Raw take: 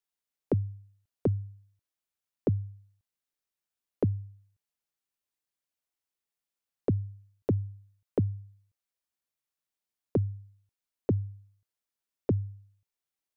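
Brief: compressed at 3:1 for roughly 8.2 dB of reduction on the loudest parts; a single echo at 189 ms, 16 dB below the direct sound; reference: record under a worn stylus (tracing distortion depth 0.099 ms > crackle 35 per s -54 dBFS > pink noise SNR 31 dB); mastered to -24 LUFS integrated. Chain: compression 3:1, threshold -33 dBFS; delay 189 ms -16 dB; tracing distortion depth 0.099 ms; crackle 35 per s -54 dBFS; pink noise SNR 31 dB; trim +16.5 dB

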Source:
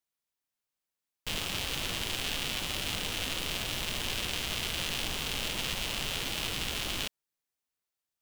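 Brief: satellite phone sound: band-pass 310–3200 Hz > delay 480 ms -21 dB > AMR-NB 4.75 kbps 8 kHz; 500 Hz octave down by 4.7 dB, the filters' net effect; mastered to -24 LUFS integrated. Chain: band-pass 310–3200 Hz; peaking EQ 500 Hz -5 dB; delay 480 ms -21 dB; trim +18.5 dB; AMR-NB 4.75 kbps 8 kHz

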